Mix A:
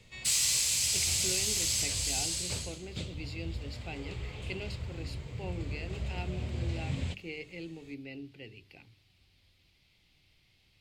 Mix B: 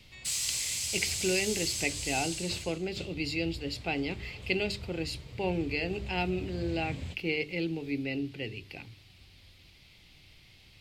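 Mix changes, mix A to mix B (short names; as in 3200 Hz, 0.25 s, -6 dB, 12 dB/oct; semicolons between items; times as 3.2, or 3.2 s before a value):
speech +10.5 dB; background -4.5 dB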